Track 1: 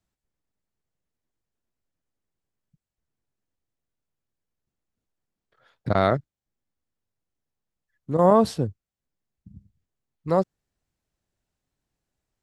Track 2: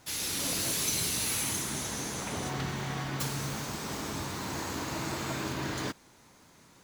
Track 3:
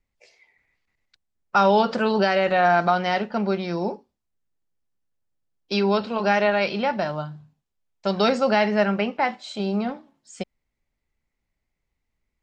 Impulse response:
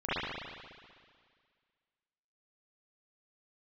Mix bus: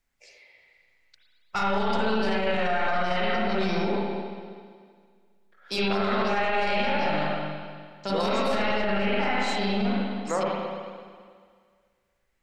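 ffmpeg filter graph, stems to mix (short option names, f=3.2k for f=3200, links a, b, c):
-filter_complex "[0:a]highpass=420,equalizer=f=1.7k:t=o:w=1.1:g=9,acompressor=threshold=-19dB:ratio=6,volume=-4dB,asplit=2[a][b];[b]volume=-7.5dB[c];[2:a]highshelf=f=2.6k:g=12,aeval=exprs='(tanh(3.16*val(0)+0.55)-tanh(0.55))/3.16':c=same,volume=-6dB,asplit=2[d][e];[e]volume=-4dB[f];[d]alimiter=limit=-24dB:level=0:latency=1,volume=0dB[g];[3:a]atrim=start_sample=2205[h];[c][f]amix=inputs=2:normalize=0[i];[i][h]afir=irnorm=-1:irlink=0[j];[a][g][j]amix=inputs=3:normalize=0,alimiter=limit=-16.5dB:level=0:latency=1:release=15"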